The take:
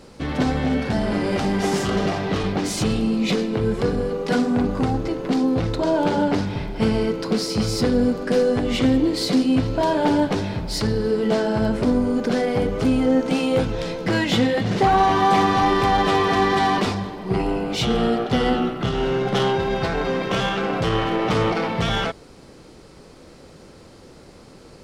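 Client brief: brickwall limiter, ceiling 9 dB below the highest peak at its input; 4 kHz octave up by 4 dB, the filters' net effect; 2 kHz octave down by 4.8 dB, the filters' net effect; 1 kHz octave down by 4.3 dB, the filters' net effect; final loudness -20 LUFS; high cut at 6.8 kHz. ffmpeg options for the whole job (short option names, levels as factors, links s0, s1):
-af "lowpass=6800,equalizer=f=1000:t=o:g=-5,equalizer=f=2000:t=o:g=-6.5,equalizer=f=4000:t=o:g=8,volume=1.78,alimiter=limit=0.266:level=0:latency=1"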